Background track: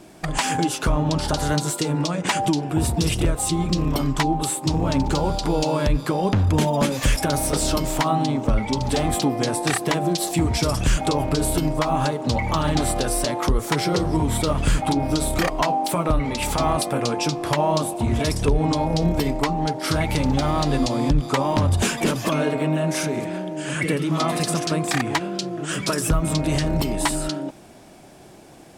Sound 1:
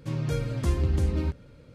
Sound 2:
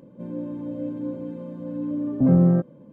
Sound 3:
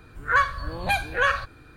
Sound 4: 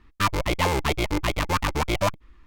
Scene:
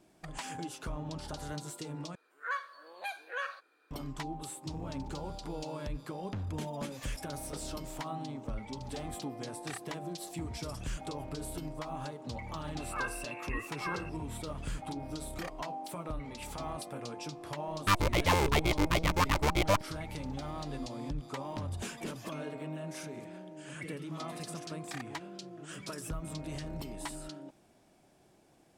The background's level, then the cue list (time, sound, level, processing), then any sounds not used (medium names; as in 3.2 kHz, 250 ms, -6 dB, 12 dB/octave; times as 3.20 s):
background track -18.5 dB
2.15 s: replace with 3 -15.5 dB + high-pass 390 Hz 24 dB/octave
12.64 s: add 3 -16.5 dB + frequency inversion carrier 2.7 kHz
17.67 s: add 4 -4 dB
not used: 1, 2